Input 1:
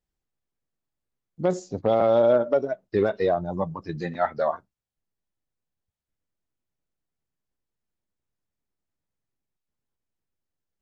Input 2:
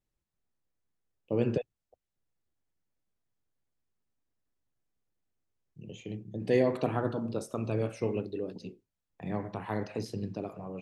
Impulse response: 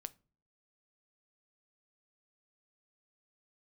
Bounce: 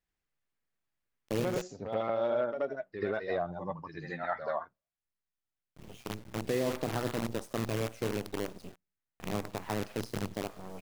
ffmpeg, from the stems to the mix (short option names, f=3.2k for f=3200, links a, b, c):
-filter_complex "[0:a]equalizer=f=1.9k:w=0.79:g=9,volume=-5.5dB,asplit=3[a][b][c];[b]volume=-14dB[d];[c]volume=-6.5dB[e];[1:a]acrusher=bits=6:dc=4:mix=0:aa=0.000001,volume=-1dB,asplit=3[f][g][h];[g]volume=-20.5dB[i];[h]apad=whole_len=476983[j];[a][j]sidechaingate=range=-22dB:threshold=-44dB:ratio=16:detection=peak[k];[2:a]atrim=start_sample=2205[l];[d][i]amix=inputs=2:normalize=0[m];[m][l]afir=irnorm=-1:irlink=0[n];[e]aecho=0:1:80:1[o];[k][f][n][o]amix=inputs=4:normalize=0,alimiter=limit=-21dB:level=0:latency=1:release=132"